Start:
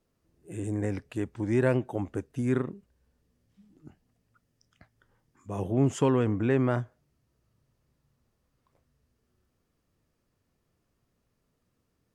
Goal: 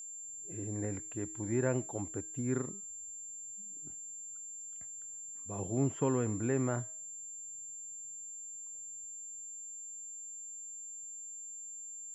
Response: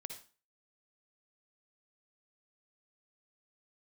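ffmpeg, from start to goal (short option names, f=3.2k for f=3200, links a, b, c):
-filter_complex "[0:a]bandreject=f=317.7:t=h:w=4,bandreject=f=635.4:t=h:w=4,bandreject=f=953.1:t=h:w=4,bandreject=f=1.2708k:t=h:w=4,bandreject=f=1.5885k:t=h:w=4,bandreject=f=1.9062k:t=h:w=4,bandreject=f=2.2239k:t=h:w=4,bandreject=f=2.5416k:t=h:w=4,bandreject=f=2.8593k:t=h:w=4,bandreject=f=3.177k:t=h:w=4,bandreject=f=3.4947k:t=h:w=4,bandreject=f=3.8124k:t=h:w=4,bandreject=f=4.1301k:t=h:w=4,bandreject=f=4.4478k:t=h:w=4,bandreject=f=4.7655k:t=h:w=4,bandreject=f=5.0832k:t=h:w=4,bandreject=f=5.4009k:t=h:w=4,bandreject=f=5.7186k:t=h:w=4,bandreject=f=6.0363k:t=h:w=4,bandreject=f=6.354k:t=h:w=4,bandreject=f=6.6717k:t=h:w=4,bandreject=f=6.9894k:t=h:w=4,acrossover=split=2600[a][b];[b]acompressor=threshold=-58dB:ratio=4:attack=1:release=60[c];[a][c]amix=inputs=2:normalize=0,aeval=exprs='val(0)+0.0158*sin(2*PI*7300*n/s)':c=same,volume=-7dB"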